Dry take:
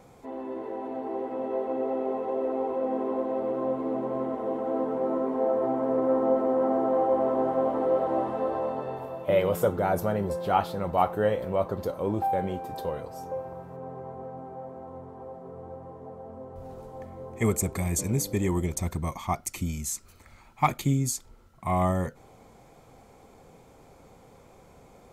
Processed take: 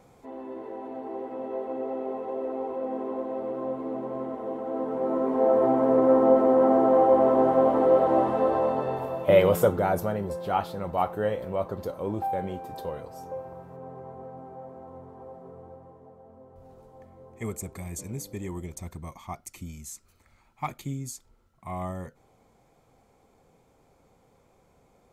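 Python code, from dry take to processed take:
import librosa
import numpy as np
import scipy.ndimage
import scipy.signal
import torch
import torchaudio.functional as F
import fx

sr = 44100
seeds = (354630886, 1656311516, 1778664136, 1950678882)

y = fx.gain(x, sr, db=fx.line((4.7, -3.0), (5.56, 5.0), (9.46, 5.0), (10.21, -2.5), (15.45, -2.5), (16.14, -9.0)))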